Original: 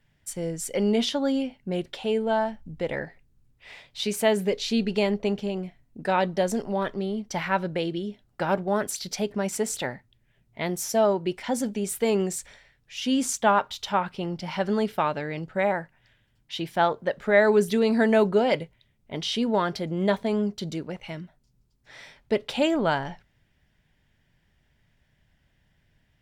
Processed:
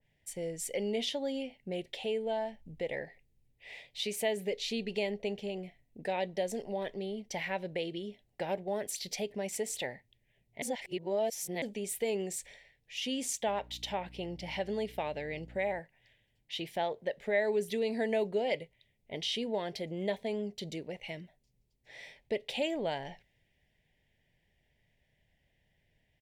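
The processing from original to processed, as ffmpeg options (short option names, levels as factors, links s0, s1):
-filter_complex "[0:a]asettb=1/sr,asplit=3[s0][s1][s2];[s0]atrim=end=13.474[s3];[s1]atrim=start=13.47:end=15.8,asetpts=PTS-STARTPTS,afade=t=in:d=0.004:c=qsin,afade=t=out:st=2.326:d=0.004:c=qsin,aeval=exprs='val(0)+0.00891*(sin(2*PI*60*n/s)+sin(2*PI*2*60*n/s)/2+sin(2*PI*3*60*n/s)/3+sin(2*PI*4*60*n/s)/4+sin(2*PI*5*60*n/s)/5)':c=same[s4];[s2]atrim=start=15.796[s5];[s3][s4]acrossfade=d=0.004:c1=hsin:c2=qsin[s6];[s6][s5]acrossfade=d=0.004:c1=qsin:c2=hsin,asplit=3[s7][s8][s9];[s7]atrim=end=10.622[s10];[s8]atrim=start=10.618:end=11.622,asetpts=PTS-STARTPTS,areverse[s11];[s9]atrim=start=11.618[s12];[s10][s11]acrossfade=d=0.004:c1=hsin:c2=hsin[s13];[s13][s12]acrossfade=d=0.004:c1=hsin:c2=hsin,firequalizer=gain_entry='entry(280,0);entry(470,7);entry(770,4);entry(1300,-14);entry(1900,6);entry(4900,0);entry(10000,2)':delay=0.05:min_phase=1,acompressor=threshold=0.0282:ratio=1.5,adynamicequalizer=threshold=0.00891:dfrequency=1900:dqfactor=0.7:tfrequency=1900:tqfactor=0.7:attack=5:release=100:ratio=0.375:range=2:mode=boostabove:tftype=highshelf,volume=0.376"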